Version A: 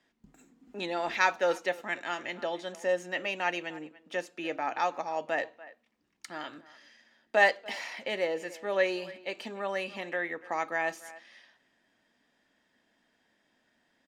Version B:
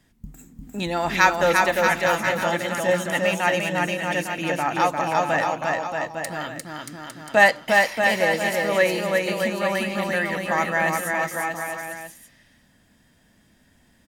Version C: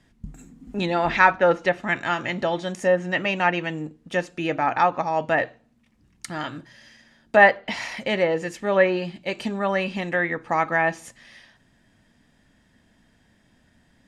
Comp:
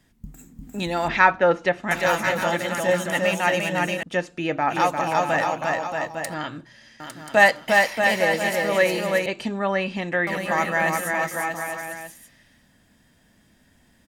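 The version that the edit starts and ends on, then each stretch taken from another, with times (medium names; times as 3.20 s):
B
1.08–1.91 s: from C
4.03–4.70 s: from C
6.34–7.00 s: from C
9.26–10.27 s: from C
not used: A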